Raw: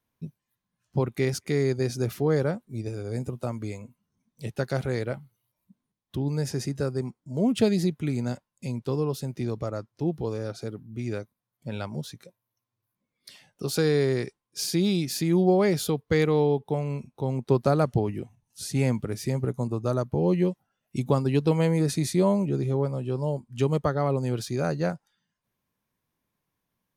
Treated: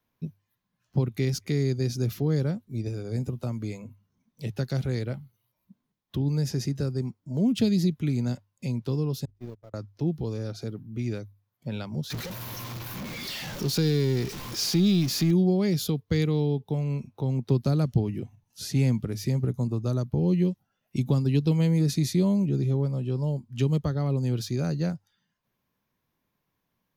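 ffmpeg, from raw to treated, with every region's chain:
-filter_complex "[0:a]asettb=1/sr,asplit=3[s0][s1][s2];[s0]atrim=end=9.254[s3];[s1]atrim=start=9.25:end=9.74,asetpts=PTS-STARTPTS,afade=t=in:d=0.004:c=qsin,afade=t=out:st=0.486:d=0.004:c=qsin,aeval=exprs='val(0)+0.5*0.0224*sgn(val(0))':c=same,agate=range=0.002:threshold=0.0631:ratio=16:release=100:detection=peak,lowshelf=f=490:g=6[s4];[s2]atrim=start=9.736[s5];[s3][s4]acrossfade=d=0.004:c1=hsin:c2=qsin[s6];[s6][s5]acrossfade=d=0.004:c1=qsin:c2=hsin,asettb=1/sr,asplit=3[s7][s8][s9];[s7]atrim=end=12.104[s10];[s8]atrim=start=12.1:end=15.31,asetpts=PTS-STARTPTS,afade=t=in:d=0.004:c=qsin,afade=t=out:st=3.206:d=0.004:c=qsin,aeval=exprs='val(0)+0.5*0.0316*sgn(val(0))':c=same,highshelf=f=9900:g=-5.5[s11];[s9]atrim=start=15.306[s12];[s10][s11]acrossfade=d=0.004:c1=hsin:c2=qsin[s13];[s13][s12]acrossfade=d=0.004:c1=qsin:c2=hsin,equalizer=f=8800:t=o:w=0.55:g=-10.5,bandreject=f=50:t=h:w=6,bandreject=f=100:t=h:w=6,acrossover=split=290|3000[s14][s15][s16];[s15]acompressor=threshold=0.00562:ratio=2.5[s17];[s14][s17][s16]amix=inputs=3:normalize=0,volume=1.41"

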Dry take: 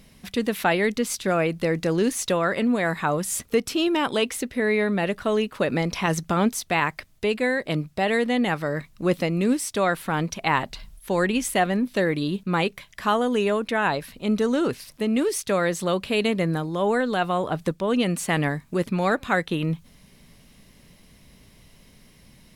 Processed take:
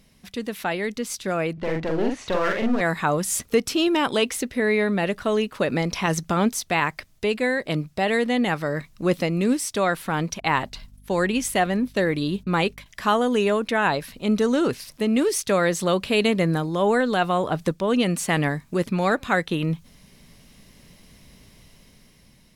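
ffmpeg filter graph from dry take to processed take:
-filter_complex "[0:a]asettb=1/sr,asplit=3[s0][s1][s2];[s0]atrim=end=1.534[s3];[s1]atrim=start=1.53:end=2.81,asetpts=PTS-STARTPTS,afade=t=in:d=0.004:c=qsin,afade=t=out:st=1.276:d=0.004:c=qsin,lowpass=2500,aeval=exprs='clip(val(0),-1,0.0398)':c=same,asplit=2[s4][s5];[s5]adelay=44,volume=0.708[s6];[s4][s6]amix=inputs=2:normalize=0,atrim=end_sample=56448[s7];[s2]atrim=start=2.806[s8];[s3][s7]acrossfade=d=0.004:c1=hsin:c2=qsin[s9];[s9][s8]acrossfade=d=0.004:c1=qsin:c2=hsin,asettb=1/sr,asplit=3[s10][s11][s12];[s10]atrim=end=10.404[s13];[s11]atrim=start=10.4:end=12.86,asetpts=PTS-STARTPTS,afade=t=in:d=0.004:c=qsin,afade=t=out:st=2.456:d=0.004:c=qsin,agate=range=0.0224:threshold=0.0112:ratio=3:release=100:detection=peak,aeval=exprs='val(0)+0.00355*(sin(2*PI*50*n/s)+sin(2*PI*2*50*n/s)/2+sin(2*PI*3*50*n/s)/3+sin(2*PI*4*50*n/s)/4+sin(2*PI*5*50*n/s)/5)':c=same[s14];[s12]atrim=start=12.856[s15];[s13][s14]acrossfade=d=0.004:c1=hsin:c2=qsin[s16];[s16][s15]acrossfade=d=0.004:c1=qsin:c2=hsin,equalizer=f=5700:t=o:w=0.77:g=2.5,dynaudnorm=f=450:g=7:m=2.99,volume=0.531"

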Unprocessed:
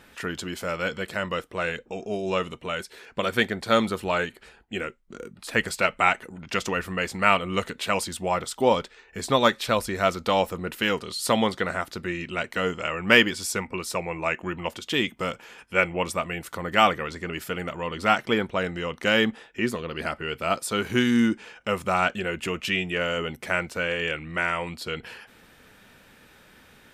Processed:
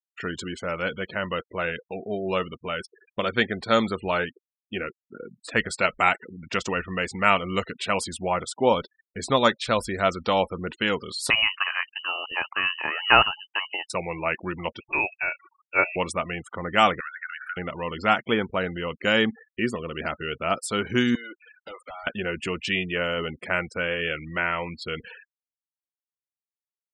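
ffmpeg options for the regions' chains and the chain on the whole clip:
-filter_complex "[0:a]asettb=1/sr,asplit=3[s0][s1][s2];[s0]atrim=end=11.304[s3];[s1]atrim=start=11.3:end=13.9,asetpts=PTS-STARTPTS,afade=t=in:d=0.004:c=qsin,afade=t=out:st=2.596:d=0.004:c=qsin,highshelf=f=2100:g=3,lowpass=f=2600:t=q:w=0.5098,lowpass=f=2600:t=q:w=0.6013,lowpass=f=2600:t=q:w=0.9,lowpass=f=2600:t=q:w=2.563,afreqshift=-3100[s4];[s2]atrim=start=13.896[s5];[s3][s4]acrossfade=d=0.004:c1=hsin:c2=qsin[s6];[s6][s5]acrossfade=d=0.004:c1=qsin:c2=hsin,asettb=1/sr,asplit=3[s7][s8][s9];[s7]atrim=end=14.804[s10];[s8]atrim=start=14.8:end=15.96,asetpts=PTS-STARTPTS,afade=t=in:d=0.004:c=qsin,afade=t=out:st=1.156:d=0.004:c=qsin,bandreject=f=700:w=7.9,aecho=1:1:3.7:0.42,atrim=end_sample=51156,lowpass=f=2400:t=q:w=0.5098,lowpass=f=2400:t=q:w=0.6013,lowpass=f=2400:t=q:w=0.9,lowpass=f=2400:t=q:w=2.563,afreqshift=-2800[s11];[s9]atrim=start=15.956[s12];[s10][s11]acrossfade=d=0.004:c1=hsin:c2=qsin[s13];[s13][s12]acrossfade=d=0.004:c1=qsin:c2=hsin,asettb=1/sr,asplit=3[s14][s15][s16];[s14]atrim=end=17.004[s17];[s15]atrim=start=17:end=17.57,asetpts=PTS-STARTPTS,afade=t=in:d=0.004:c=qsin,afade=t=out:st=0.566:d=0.004:c=qsin,highpass=f=1500:t=q:w=10,equalizer=f=5100:t=o:w=0.45:g=-12,acompressor=threshold=0.02:ratio=3:attack=3.2:release=140:knee=1:detection=peak[s18];[s16]atrim=start=17.566[s19];[s17][s18]acrossfade=d=0.004:c1=hsin:c2=qsin[s20];[s20][s19]acrossfade=d=0.004:c1=qsin:c2=hsin,asettb=1/sr,asplit=3[s21][s22][s23];[s21]atrim=end=21.154[s24];[s22]atrim=start=21.15:end=22.07,asetpts=PTS-STARTPTS,afade=t=in:d=0.004:c=qsin,afade=t=out:st=0.916:d=0.004:c=qsin,highpass=f=490:w=0.5412,highpass=f=490:w=1.3066,acompressor=threshold=0.0316:ratio=10:attack=3.2:release=140:knee=1:detection=peak,aeval=exprs='0.0266*(abs(mod(val(0)/0.0266+3,4)-2)-1)':c=same[s25];[s23]atrim=start=22.066[s26];[s24][s25]acrossfade=d=0.004:c1=hsin:c2=qsin[s27];[s27][s26]acrossfade=d=0.004:c1=qsin:c2=hsin,agate=range=0.0224:threshold=0.00794:ratio=3:detection=peak,lowpass=f=11000:w=0.5412,lowpass=f=11000:w=1.3066,afftfilt=real='re*gte(hypot(re,im),0.0158)':imag='im*gte(hypot(re,im),0.0158)':win_size=1024:overlap=0.75"

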